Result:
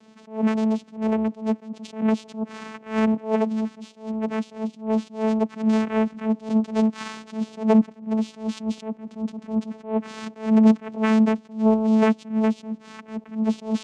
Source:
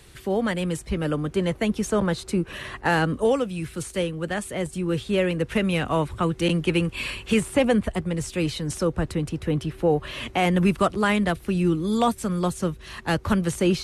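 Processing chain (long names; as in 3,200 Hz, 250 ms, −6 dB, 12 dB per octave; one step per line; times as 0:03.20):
channel vocoder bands 4, saw 219 Hz
level that may rise only so fast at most 170 dB per second
level +4.5 dB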